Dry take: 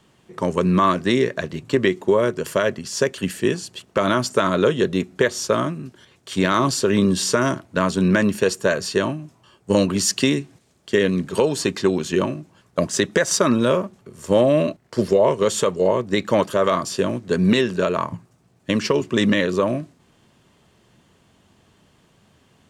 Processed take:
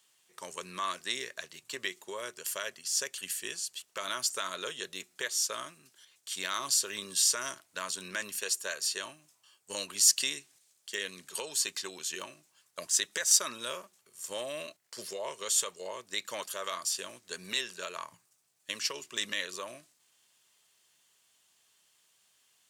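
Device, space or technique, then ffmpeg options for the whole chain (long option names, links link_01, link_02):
low shelf boost with a cut just above: -filter_complex "[0:a]asettb=1/sr,asplit=3[link_01][link_02][link_03];[link_01]atrim=end=8.384[link_04];[link_02]atrim=start=8.38:end=9.01,asetpts=PTS-STARTPTS,afade=type=in:duration=0.004:curve=qsin,afade=type=out:start_time=0.626:duration=0.004:curve=qsin,highpass=160[link_05];[link_03]atrim=start=9.006[link_06];[link_04][link_05]acrossfade=duration=0.004:curve1=hsin:curve2=qsin[link_07];[link_07][link_06]acrossfade=duration=0.004:curve1=qsin:curve2=hsin,aderivative,lowshelf=frequency=78:gain=6.5,equalizer=frequency=230:width_type=o:width=1.1:gain=-4"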